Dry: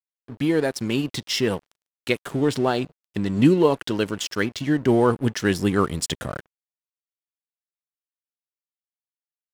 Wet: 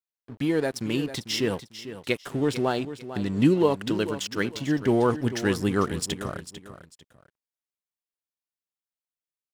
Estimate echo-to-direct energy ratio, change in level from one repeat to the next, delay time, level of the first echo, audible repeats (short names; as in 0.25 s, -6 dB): -12.0 dB, -11.0 dB, 0.447 s, -12.5 dB, 2